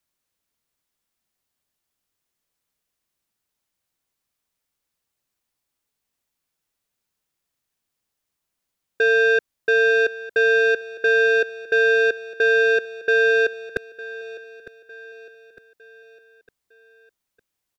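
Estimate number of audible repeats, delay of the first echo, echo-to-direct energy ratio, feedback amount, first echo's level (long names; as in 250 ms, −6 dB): 3, 906 ms, −16.0 dB, 46%, −17.0 dB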